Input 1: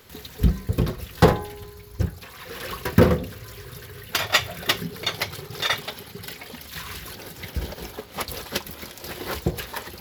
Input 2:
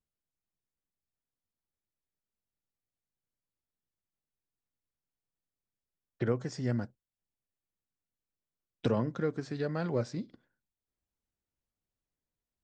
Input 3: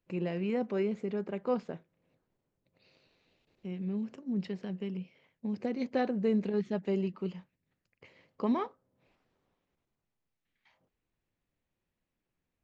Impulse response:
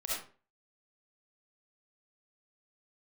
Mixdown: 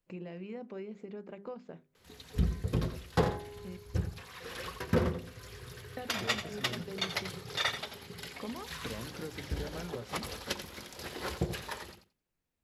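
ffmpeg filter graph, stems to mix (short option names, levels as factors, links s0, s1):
-filter_complex "[0:a]lowpass=f=11000:w=0.5412,lowpass=f=11000:w=1.3066,dynaudnorm=f=100:g=5:m=2,adelay=1950,volume=0.224,asplit=2[s0][s1];[s1]volume=0.316[s2];[1:a]volume=0.944[s3];[2:a]volume=0.75,asplit=3[s4][s5][s6];[s4]atrim=end=3.77,asetpts=PTS-STARTPTS,afade=t=out:st=3.766:d=0.004:c=hsin[s7];[s5]atrim=start=3.77:end=5.97,asetpts=PTS-STARTPTS,volume=0[s8];[s6]atrim=start=5.97,asetpts=PTS-STARTPTS,afade=t=in:d=0.004:c=hsin[s9];[s7][s8][s9]concat=n=3:v=0:a=1[s10];[s3][s10]amix=inputs=2:normalize=0,acompressor=threshold=0.01:ratio=4,volume=1[s11];[s2]aecho=0:1:87|174|261:1|0.16|0.0256[s12];[s0][s11][s12]amix=inputs=3:normalize=0,bandreject=f=50:t=h:w=6,bandreject=f=100:t=h:w=6,bandreject=f=150:t=h:w=6,bandreject=f=200:t=h:w=6,bandreject=f=250:t=h:w=6,bandreject=f=300:t=h:w=6,bandreject=f=350:t=h:w=6,bandreject=f=400:t=h:w=6"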